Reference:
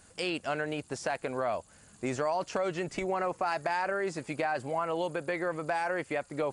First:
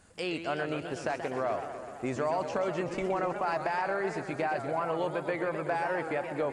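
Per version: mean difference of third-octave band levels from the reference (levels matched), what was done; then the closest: 5.0 dB: treble shelf 3.5 kHz -7.5 dB; modulated delay 126 ms, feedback 74%, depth 210 cents, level -9 dB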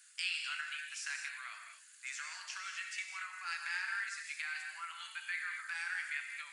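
18.0 dB: steep high-pass 1.5 kHz 36 dB/octave; gated-style reverb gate 260 ms flat, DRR 2 dB; trim -1.5 dB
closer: first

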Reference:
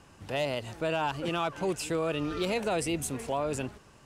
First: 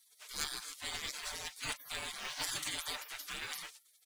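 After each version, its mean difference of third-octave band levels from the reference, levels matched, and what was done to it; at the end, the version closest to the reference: 15.0 dB: spectral gate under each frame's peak -30 dB weak; comb 6.7 ms, depth 49%; short-mantissa float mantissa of 2-bit; trim +10 dB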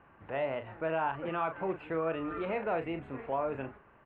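8.5 dB: inverse Chebyshev low-pass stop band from 5.2 kHz, stop band 50 dB; bass shelf 350 Hz -9.5 dB; doubling 37 ms -9 dB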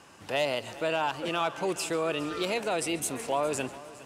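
3.5 dB: high-pass 380 Hz 6 dB/octave; gain riding within 3 dB 0.5 s; on a send: multi-head delay 137 ms, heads first and third, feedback 47%, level -19 dB; on the sum: trim +3 dB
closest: third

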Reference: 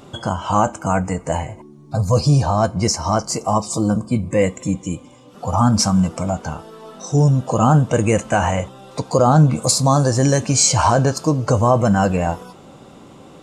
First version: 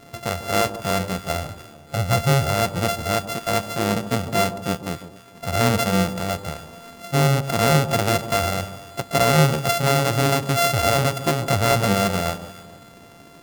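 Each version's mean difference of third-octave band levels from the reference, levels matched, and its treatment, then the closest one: 10.5 dB: sorted samples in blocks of 64 samples; on a send: echo whose repeats swap between lows and highs 147 ms, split 1.1 kHz, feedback 53%, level -11 dB; on the sum: trim -4 dB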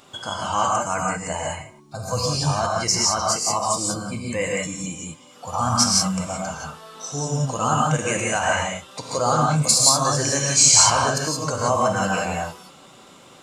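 8.0 dB: tilt shelf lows -8 dB, about 720 Hz; gated-style reverb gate 200 ms rising, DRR -2 dB; trim -8 dB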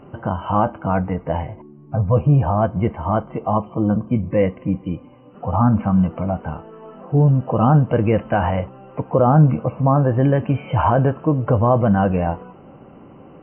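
6.0 dB: brick-wall FIR low-pass 3.1 kHz; treble shelf 2 kHz -10.5 dB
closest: third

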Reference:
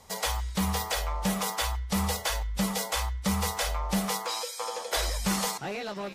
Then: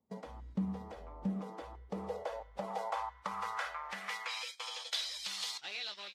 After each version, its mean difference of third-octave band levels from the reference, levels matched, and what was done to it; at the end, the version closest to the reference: 10.5 dB: de-hum 74.41 Hz, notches 2; gate -36 dBFS, range -22 dB; compression, threshold -33 dBFS, peak gain reduction 9.5 dB; band-pass sweep 240 Hz -> 3.7 kHz, 1.24–4.94 s; trim +7 dB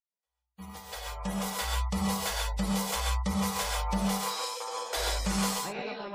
8.0 dB: fade-in on the opening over 1.83 s; gate -35 dBFS, range -43 dB; spectral gate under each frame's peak -30 dB strong; gated-style reverb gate 160 ms rising, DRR -1.5 dB; trim -4.5 dB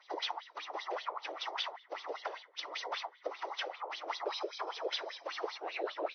15.0 dB: compression, threshold -31 dBFS, peak gain reduction 8 dB; wah-wah 5.1 Hz 470–3800 Hz, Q 4.6; whisper effect; brick-wall FIR band-pass 290–6200 Hz; trim +7 dB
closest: second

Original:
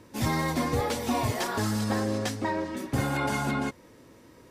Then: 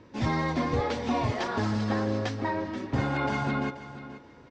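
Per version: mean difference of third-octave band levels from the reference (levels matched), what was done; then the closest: 6.0 dB: Bessel low-pass 3.8 kHz, order 8; feedback delay 481 ms, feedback 21%, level -14 dB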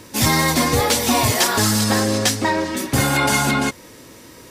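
4.0 dB: in parallel at -12 dB: saturation -27 dBFS, distortion -12 dB; on the sum: treble shelf 2.3 kHz +11 dB; trim +7 dB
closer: second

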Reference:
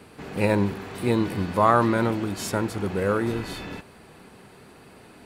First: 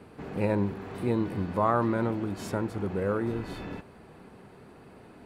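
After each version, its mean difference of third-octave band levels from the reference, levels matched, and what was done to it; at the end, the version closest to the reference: 4.0 dB: treble shelf 2.1 kHz -11.5 dB; in parallel at -1.5 dB: compression, threshold -32 dBFS, peak gain reduction 16 dB; on the sum: trim -6 dB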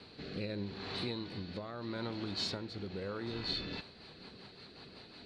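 7.5 dB: compression 6:1, threshold -31 dBFS, peak gain reduction 16.5 dB; resonant low-pass 4.2 kHz, resonance Q 8.2; rotary cabinet horn 0.8 Hz, later 5.5 Hz, at 3.27 s; trim -4.5 dB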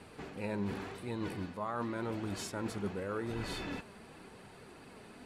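5.5 dB: reverse; compression 10:1, threshold -29 dBFS, peak gain reduction 16 dB; reverse; low-pass 11 kHz 12 dB/octave; flange 0.89 Hz, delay 1 ms, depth 4.2 ms, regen +63%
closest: first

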